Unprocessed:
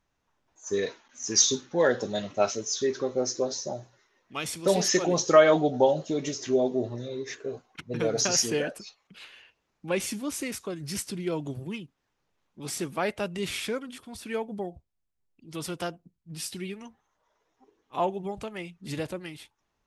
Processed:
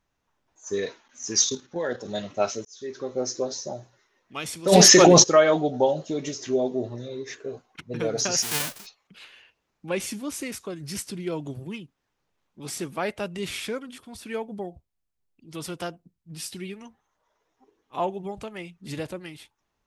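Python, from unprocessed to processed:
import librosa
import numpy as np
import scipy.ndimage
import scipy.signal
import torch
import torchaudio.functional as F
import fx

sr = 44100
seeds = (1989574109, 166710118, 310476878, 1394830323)

y = fx.level_steps(x, sr, step_db=9, at=(1.44, 2.08))
y = fx.env_flatten(y, sr, amount_pct=100, at=(4.71, 5.22), fade=0.02)
y = fx.envelope_flatten(y, sr, power=0.1, at=(8.42, 8.85), fade=0.02)
y = fx.edit(y, sr, fx.fade_in_span(start_s=2.65, length_s=0.57), tone=tone)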